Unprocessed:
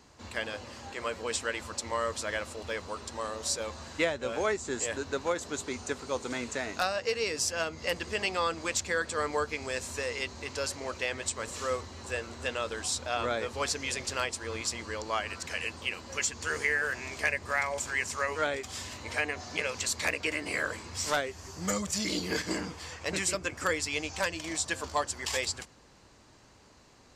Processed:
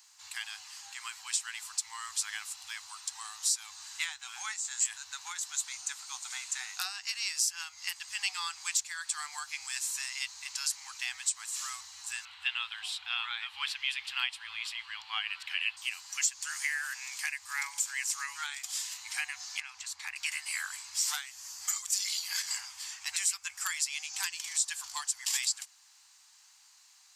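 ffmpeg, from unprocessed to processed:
-filter_complex "[0:a]asettb=1/sr,asplit=3[a][b][c];[a]atrim=end=12.254[d];[b]atrim=start=12.25:end=15.77,asetpts=PTS-STARTPTS,afade=t=in:d=0.004:c=qsin,afade=t=out:st=3.516:d=0.004:c=qsin,highshelf=f=4.5k:t=q:w=3:g=-13.5[e];[c]atrim=start=15.766[f];[d][e]acrossfade=d=0.004:c1=hsin:c2=qsin[g];[g][f]acrossfade=d=0.004:c1=qsin:c2=hsin,asettb=1/sr,asplit=3[h][i][j];[h]atrim=end=19.604[k];[i]atrim=start=19.6:end=20.16,asetpts=PTS-STARTPTS,afade=t=in:d=0.004:c=qsin,afade=t=out:st=0.556:d=0.004:c=qsin,lowpass=f=1.2k:p=1[l];[j]atrim=start=20.156[m];[k][l]acrossfade=d=0.004:c1=hsin:c2=qsin[n];[n][m]acrossfade=d=0.004:c1=qsin:c2=hsin,afftfilt=real='re*(1-between(b*sr/4096,100,740))':imag='im*(1-between(b*sr/4096,100,740))':win_size=4096:overlap=0.75,aderivative,alimiter=level_in=0.5dB:limit=-24dB:level=0:latency=1:release=360,volume=-0.5dB,volume=7dB"

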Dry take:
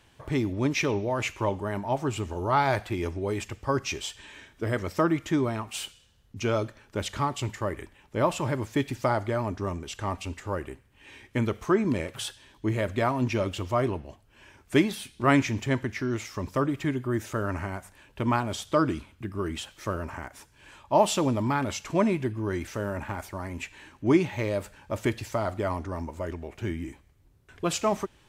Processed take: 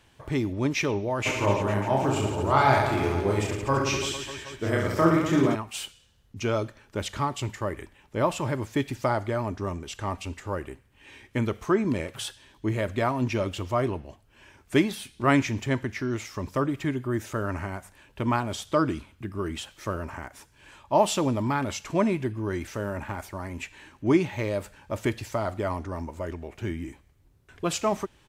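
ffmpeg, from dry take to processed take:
-filter_complex "[0:a]asplit=3[a][b][c];[a]afade=t=out:st=1.25:d=0.02[d];[b]aecho=1:1:30|67.5|114.4|173|246.2|337.8|452.2|595.3|774.1:0.794|0.631|0.501|0.398|0.316|0.251|0.2|0.158|0.126,afade=t=in:st=1.25:d=0.02,afade=t=out:st=5.54:d=0.02[e];[c]afade=t=in:st=5.54:d=0.02[f];[d][e][f]amix=inputs=3:normalize=0"

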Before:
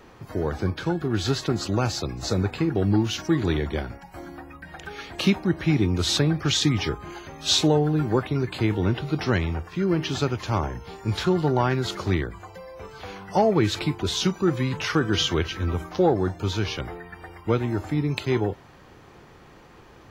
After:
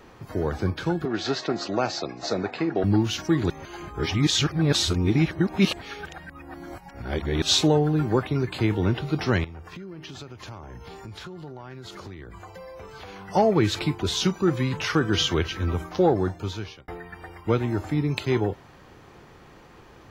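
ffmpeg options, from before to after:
-filter_complex "[0:a]asettb=1/sr,asplit=3[a][b][c];[a]atrim=end=1.054[d];[b]atrim=start=1.05:end=2.84,asetpts=PTS-STARTPTS,afade=t=in:d=0.004:c=qsin,afade=t=out:st=1.786:d=0.004:c=qsin,highpass=240,equalizer=f=670:t=q:w=4:g=7,equalizer=f=1.9k:t=q:w=4:g=3,equalizer=f=3.2k:t=q:w=4:g=-3,lowpass=f=6k:w=0.5412,lowpass=f=6k:w=1.3066[e];[c]atrim=start=2.836[f];[d][e]acrossfade=d=0.004:c1=hsin:c2=qsin[g];[g][f]acrossfade=d=0.004:c1=qsin:c2=hsin,asettb=1/sr,asplit=3[h][i][j];[h]atrim=end=9.444[k];[i]atrim=start=9.44:end=13.25,asetpts=PTS-STARTPTS,afade=t=in:d=0.004:c=qsin,afade=t=out:st=3.806:d=0.004:c=qsin,acompressor=threshold=-36dB:ratio=10:attack=3.2:release=140:knee=1:detection=peak[l];[j]atrim=start=13.246[m];[k][l]acrossfade=d=0.004:c1=hsin:c2=qsin[n];[n][m]acrossfade=d=0.004:c1=qsin:c2=hsin,asplit=4[o][p][q][r];[o]atrim=end=3.502[s];[p]atrim=start=3.498:end=7.422,asetpts=PTS-STARTPTS,areverse[t];[q]atrim=start=7.418:end=16.88,asetpts=PTS-STARTPTS,afade=t=out:st=8.782:d=0.68[u];[r]atrim=start=16.88,asetpts=PTS-STARTPTS,afade=t=in:d=0.004:c=hsin[v];[s][t]acrossfade=d=0.004:c1=hsin:c2=hsin[w];[u][v]concat=n=2:v=0:a=1[x];[w][x]acrossfade=d=0.004:c1=hsin:c2=hsin"

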